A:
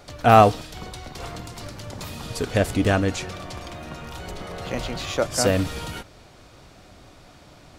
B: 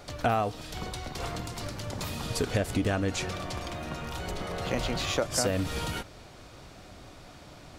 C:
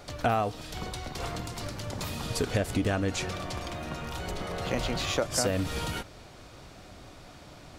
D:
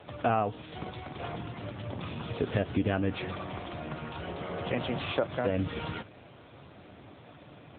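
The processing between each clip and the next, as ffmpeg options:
ffmpeg -i in.wav -af "acompressor=threshold=-23dB:ratio=16" out.wav
ffmpeg -i in.wav -af anull out.wav
ffmpeg -i in.wav -ar 8000 -c:a libopencore_amrnb -b:a 7950 out.amr

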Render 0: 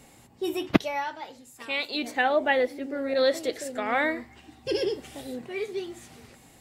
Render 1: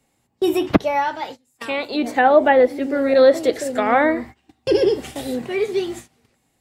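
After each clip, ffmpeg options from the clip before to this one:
ffmpeg -i in.wav -filter_complex "[0:a]agate=range=-24dB:threshold=-44dB:ratio=16:detection=peak,acrossover=split=200|1500[link_01][link_02][link_03];[link_03]acompressor=threshold=-42dB:ratio=6[link_04];[link_01][link_02][link_04]amix=inputs=3:normalize=0,alimiter=level_in=12dB:limit=-1dB:release=50:level=0:latency=1,volume=-1dB" out.wav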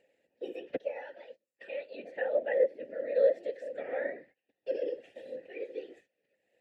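ffmpeg -i in.wav -filter_complex "[0:a]afftfilt=real='hypot(re,im)*cos(2*PI*random(0))':imag='hypot(re,im)*sin(2*PI*random(1))':win_size=512:overlap=0.75,acompressor=mode=upward:threshold=-41dB:ratio=2.5,asplit=3[link_01][link_02][link_03];[link_01]bandpass=frequency=530:width_type=q:width=8,volume=0dB[link_04];[link_02]bandpass=frequency=1840:width_type=q:width=8,volume=-6dB[link_05];[link_03]bandpass=frequency=2480:width_type=q:width=8,volume=-9dB[link_06];[link_04][link_05][link_06]amix=inputs=3:normalize=0,volume=-3dB" out.wav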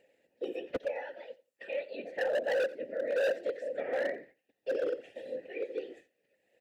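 ffmpeg -i in.wav -af "asoftclip=type=hard:threshold=-29.5dB,aecho=1:1:88|176:0.1|0.017,volume=3dB" out.wav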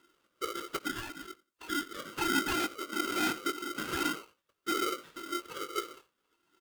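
ffmpeg -i in.wav -filter_complex "[0:a]flanger=delay=1.6:depth=1.6:regen=44:speed=1.7:shape=triangular,asplit=2[link_01][link_02];[link_02]adelay=20,volume=-10.5dB[link_03];[link_01][link_03]amix=inputs=2:normalize=0,aeval=exprs='val(0)*sgn(sin(2*PI*860*n/s))':channel_layout=same,volume=3dB" out.wav

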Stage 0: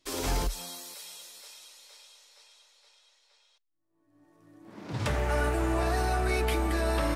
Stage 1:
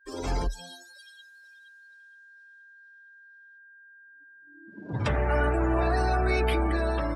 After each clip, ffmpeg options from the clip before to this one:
ffmpeg -i in.wav -af "aeval=exprs='val(0)+0.00282*sin(2*PI*1600*n/s)':channel_layout=same,dynaudnorm=framelen=100:gausssize=9:maxgain=3dB,afftdn=noise_reduction=27:noise_floor=-36" out.wav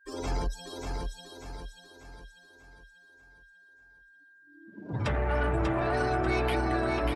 ffmpeg -i in.wav -filter_complex "[0:a]asoftclip=type=tanh:threshold=-20dB,asplit=2[link_01][link_02];[link_02]aecho=0:1:591|1182|1773|2364|2955|3546:0.631|0.278|0.122|0.0537|0.0236|0.0104[link_03];[link_01][link_03]amix=inputs=2:normalize=0,volume=-1dB" out.wav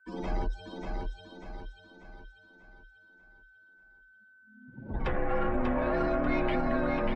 ffmpeg -i in.wav -af "lowpass=2600,bandreject=frequency=1400:width=13,afreqshift=-78" out.wav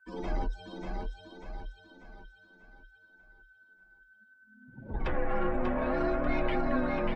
ffmpeg -i in.wav -af "flanger=delay=1.1:depth=5.1:regen=59:speed=0.63:shape=triangular,volume=3dB" out.wav

